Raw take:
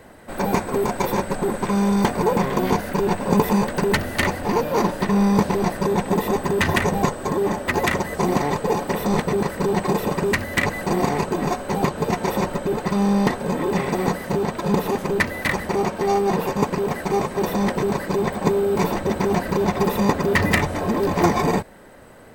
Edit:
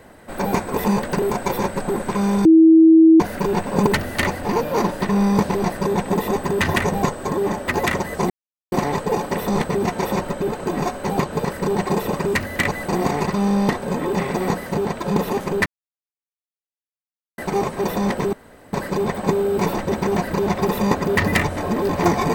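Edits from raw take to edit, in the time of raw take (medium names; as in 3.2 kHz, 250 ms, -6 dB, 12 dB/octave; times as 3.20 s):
1.99–2.74 s: bleep 323 Hz -6.5 dBFS
3.41–3.87 s: move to 0.76 s
8.30 s: insert silence 0.42 s
9.42–11.25 s: swap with 12.09–12.85 s
15.24–16.96 s: mute
17.91 s: insert room tone 0.40 s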